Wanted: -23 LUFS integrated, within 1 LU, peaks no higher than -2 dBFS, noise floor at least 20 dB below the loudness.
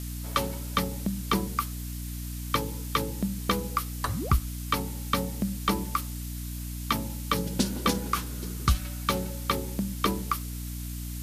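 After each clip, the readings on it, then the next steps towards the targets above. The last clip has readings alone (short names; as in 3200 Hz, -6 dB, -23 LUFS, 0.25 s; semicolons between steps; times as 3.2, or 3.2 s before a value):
hum 60 Hz; harmonics up to 300 Hz; hum level -33 dBFS; noise floor -36 dBFS; noise floor target -51 dBFS; loudness -30.5 LUFS; peak -10.0 dBFS; loudness target -23.0 LUFS
-> notches 60/120/180/240/300 Hz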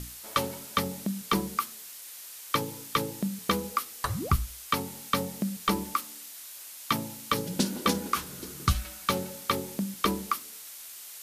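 hum none; noise floor -45 dBFS; noise floor target -52 dBFS
-> noise print and reduce 7 dB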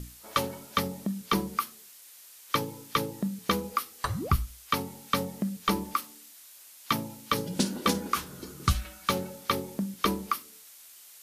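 noise floor -52 dBFS; loudness -31.0 LUFS; peak -11.0 dBFS; loudness target -23.0 LUFS
-> gain +8 dB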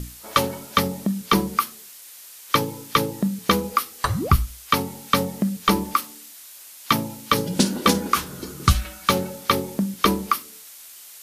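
loudness -23.0 LUFS; peak -3.0 dBFS; noise floor -44 dBFS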